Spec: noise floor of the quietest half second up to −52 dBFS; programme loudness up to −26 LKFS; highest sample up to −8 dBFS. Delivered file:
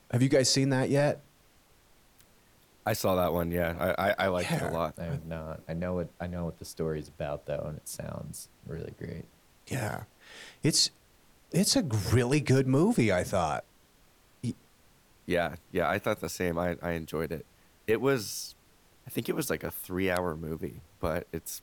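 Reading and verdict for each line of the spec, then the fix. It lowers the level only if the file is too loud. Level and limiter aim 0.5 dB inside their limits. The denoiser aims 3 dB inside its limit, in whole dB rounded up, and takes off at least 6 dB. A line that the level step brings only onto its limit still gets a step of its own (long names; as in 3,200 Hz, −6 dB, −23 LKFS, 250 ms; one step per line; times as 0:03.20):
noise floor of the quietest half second −62 dBFS: in spec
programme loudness −30.0 LKFS: in spec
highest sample −14.5 dBFS: in spec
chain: no processing needed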